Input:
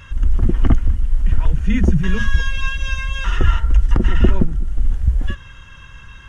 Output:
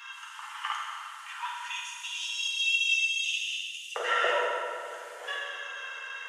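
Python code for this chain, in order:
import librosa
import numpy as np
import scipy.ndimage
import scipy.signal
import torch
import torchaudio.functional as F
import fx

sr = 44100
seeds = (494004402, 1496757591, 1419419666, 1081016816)

y = fx.cheby_ripple_highpass(x, sr, hz=fx.steps((0.0, 850.0), (1.69, 2500.0), (3.95, 440.0)), ripple_db=3)
y = fx.rev_fdn(y, sr, rt60_s=2.3, lf_ratio=1.55, hf_ratio=0.7, size_ms=30.0, drr_db=-4.5)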